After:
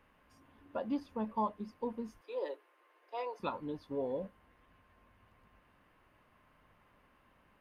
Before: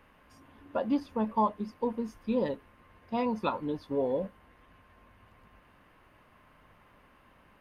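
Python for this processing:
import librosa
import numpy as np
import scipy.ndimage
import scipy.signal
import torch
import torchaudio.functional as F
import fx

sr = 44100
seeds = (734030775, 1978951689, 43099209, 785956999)

y = fx.steep_highpass(x, sr, hz=320.0, slope=72, at=(2.21, 3.4))
y = y * 10.0 ** (-7.0 / 20.0)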